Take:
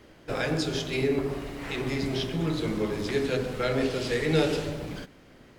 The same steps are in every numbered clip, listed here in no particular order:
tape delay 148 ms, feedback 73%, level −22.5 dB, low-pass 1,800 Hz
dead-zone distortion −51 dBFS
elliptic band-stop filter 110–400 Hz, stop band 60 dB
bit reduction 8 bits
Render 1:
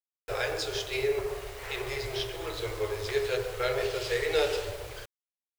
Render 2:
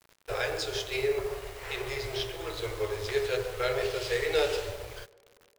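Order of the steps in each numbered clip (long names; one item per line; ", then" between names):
tape delay, then dead-zone distortion, then elliptic band-stop filter, then bit reduction
elliptic band-stop filter, then bit reduction, then dead-zone distortion, then tape delay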